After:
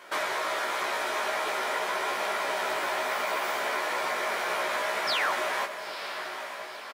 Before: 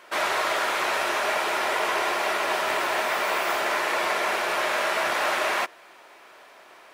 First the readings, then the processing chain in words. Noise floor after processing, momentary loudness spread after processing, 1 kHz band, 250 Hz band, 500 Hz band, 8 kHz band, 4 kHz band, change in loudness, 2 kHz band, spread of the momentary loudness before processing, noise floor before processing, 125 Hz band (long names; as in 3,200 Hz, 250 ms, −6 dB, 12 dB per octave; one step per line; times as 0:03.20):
−40 dBFS, 8 LU, −4.0 dB, −6.0 dB, −4.0 dB, −4.5 dB, −3.5 dB, −5.0 dB, −4.5 dB, 1 LU, −51 dBFS, can't be measured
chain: high-pass filter 81 Hz
notch filter 2,700 Hz, Q 14
downward compressor, threshold −29 dBFS, peak gain reduction 8 dB
sound drawn into the spectrogram fall, 0:05.07–0:05.33, 820–5,700 Hz −31 dBFS
double-tracking delay 16 ms −3 dB
feedback delay with all-pass diffusion 948 ms, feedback 53%, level −9 dB